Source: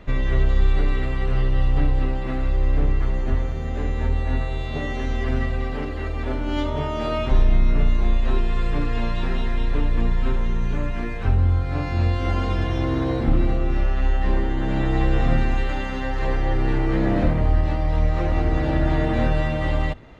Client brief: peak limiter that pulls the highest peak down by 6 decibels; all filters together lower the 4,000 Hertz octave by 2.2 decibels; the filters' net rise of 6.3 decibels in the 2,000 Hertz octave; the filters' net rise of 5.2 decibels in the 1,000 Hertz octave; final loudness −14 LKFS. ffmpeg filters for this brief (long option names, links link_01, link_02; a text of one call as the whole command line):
ffmpeg -i in.wav -af "equalizer=frequency=1000:width_type=o:gain=5.5,equalizer=frequency=2000:width_type=o:gain=7.5,equalizer=frequency=4000:width_type=o:gain=-7.5,volume=10dB,alimiter=limit=-2.5dB:level=0:latency=1" out.wav